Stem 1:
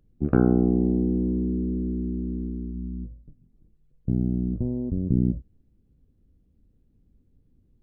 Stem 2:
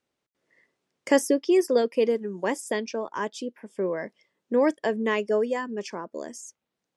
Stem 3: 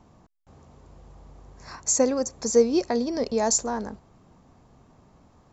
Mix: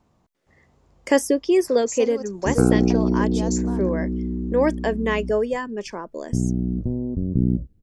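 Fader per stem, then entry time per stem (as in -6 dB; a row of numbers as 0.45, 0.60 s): +2.0, +2.5, -8.5 dB; 2.25, 0.00, 0.00 s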